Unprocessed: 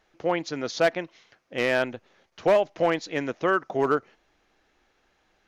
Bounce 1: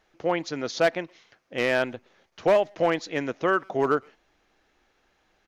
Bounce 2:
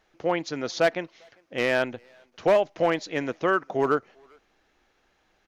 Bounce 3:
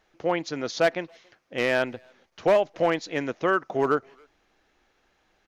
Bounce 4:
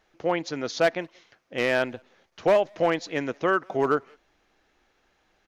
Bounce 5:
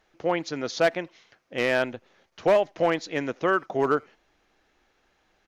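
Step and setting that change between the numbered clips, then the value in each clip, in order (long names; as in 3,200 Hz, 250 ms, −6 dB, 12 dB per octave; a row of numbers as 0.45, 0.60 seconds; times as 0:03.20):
far-end echo of a speakerphone, delay time: 120, 400, 280, 180, 80 milliseconds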